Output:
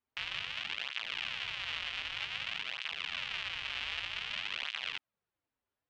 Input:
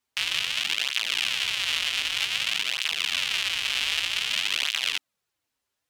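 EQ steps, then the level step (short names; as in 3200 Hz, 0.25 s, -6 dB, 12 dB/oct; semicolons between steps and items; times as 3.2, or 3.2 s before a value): dynamic EQ 310 Hz, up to -7 dB, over -53 dBFS, Q 0.74; tape spacing loss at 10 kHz 33 dB; -2.0 dB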